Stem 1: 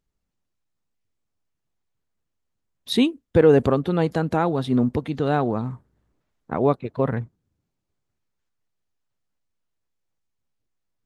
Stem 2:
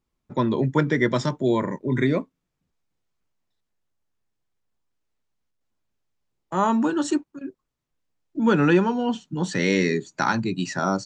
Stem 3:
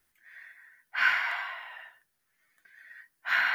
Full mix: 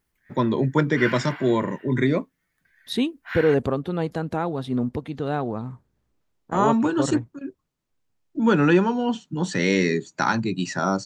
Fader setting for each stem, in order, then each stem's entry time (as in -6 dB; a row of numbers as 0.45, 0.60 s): -4.5, +0.5, -6.0 dB; 0.00, 0.00, 0.00 s